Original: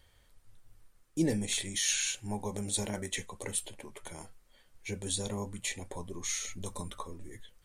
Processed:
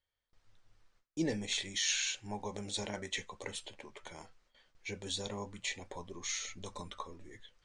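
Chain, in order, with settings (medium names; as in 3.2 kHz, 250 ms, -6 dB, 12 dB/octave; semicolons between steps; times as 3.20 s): gate with hold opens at -52 dBFS; low-pass 6.2 kHz 24 dB/octave; bass shelf 350 Hz -8.5 dB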